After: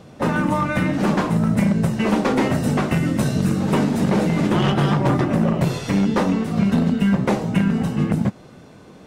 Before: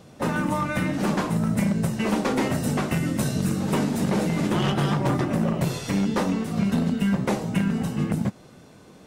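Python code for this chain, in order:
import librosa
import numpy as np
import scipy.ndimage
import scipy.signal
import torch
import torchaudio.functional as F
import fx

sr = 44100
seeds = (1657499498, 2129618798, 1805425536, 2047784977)

y = fx.high_shelf(x, sr, hz=5400.0, db=-8.5)
y = F.gain(torch.from_numpy(y), 5.0).numpy()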